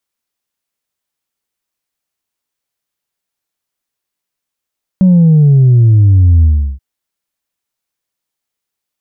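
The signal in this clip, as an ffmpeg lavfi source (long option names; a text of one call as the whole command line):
ffmpeg -f lavfi -i "aevalsrc='0.631*clip((1.78-t)/0.36,0,1)*tanh(1.12*sin(2*PI*190*1.78/log(65/190)*(exp(log(65/190)*t/1.78)-1)))/tanh(1.12)':duration=1.78:sample_rate=44100" out.wav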